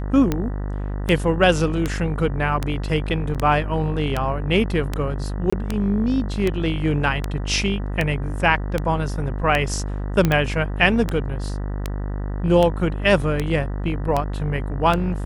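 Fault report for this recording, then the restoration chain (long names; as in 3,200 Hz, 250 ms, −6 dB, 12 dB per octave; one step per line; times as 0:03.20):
mains buzz 50 Hz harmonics 39 −26 dBFS
scratch tick 78 rpm −8 dBFS
0:03.34–0:03.35: drop-out 7.2 ms
0:05.50–0:05.53: drop-out 25 ms
0:10.25: click −6 dBFS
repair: click removal
hum removal 50 Hz, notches 39
repair the gap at 0:03.34, 7.2 ms
repair the gap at 0:05.50, 25 ms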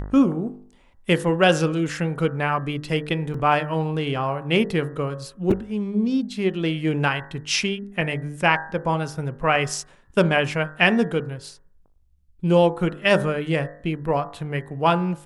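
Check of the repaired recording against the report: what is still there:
none of them is left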